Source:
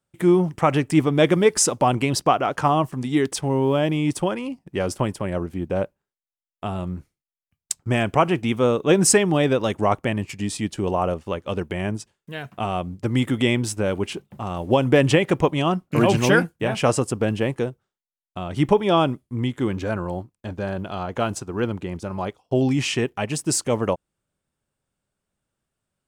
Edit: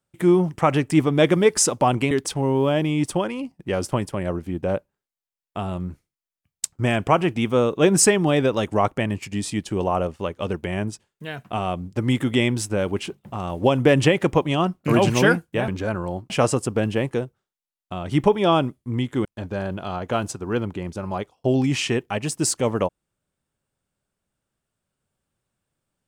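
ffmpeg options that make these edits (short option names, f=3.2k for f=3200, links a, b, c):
-filter_complex "[0:a]asplit=5[a][b][c][d][e];[a]atrim=end=2.112[f];[b]atrim=start=3.178:end=16.752[g];[c]atrim=start=19.698:end=20.322[h];[d]atrim=start=16.748:end=19.702[i];[e]atrim=start=20.318[j];[f][g]acrossfade=d=0.004:c1=hsin:c2=hsin[k];[k][h]acrossfade=d=0.004:c1=hsin:c2=hsin[l];[l][i]acrossfade=d=0.004:c1=hsin:c2=hsin[m];[m][j]acrossfade=d=0.004:c1=hsin:c2=hsin"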